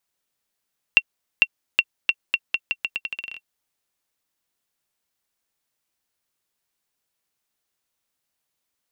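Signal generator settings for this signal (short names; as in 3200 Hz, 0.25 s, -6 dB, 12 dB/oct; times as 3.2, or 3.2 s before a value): bouncing ball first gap 0.45 s, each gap 0.82, 2730 Hz, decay 51 ms -1 dBFS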